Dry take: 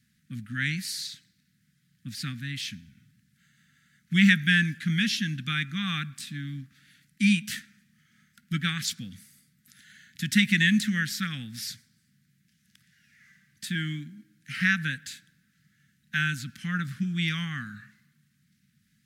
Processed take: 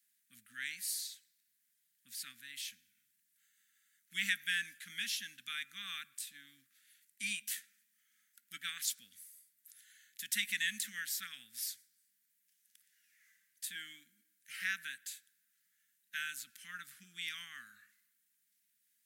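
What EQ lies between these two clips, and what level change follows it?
differentiator; bell 150 Hz -11 dB 0.38 oct; bell 4900 Hz -6 dB 1.1 oct; 0.0 dB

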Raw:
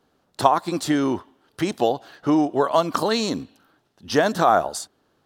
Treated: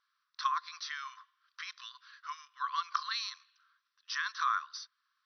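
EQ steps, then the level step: brick-wall FIR band-pass 1000–6100 Hz; bell 2900 Hz -5.5 dB 0.31 oct; -7.5 dB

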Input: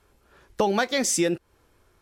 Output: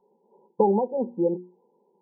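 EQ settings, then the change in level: brick-wall FIR band-pass 170–1000 Hz; notches 60/120/180/240/300/360 Hz; fixed phaser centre 440 Hz, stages 8; +4.5 dB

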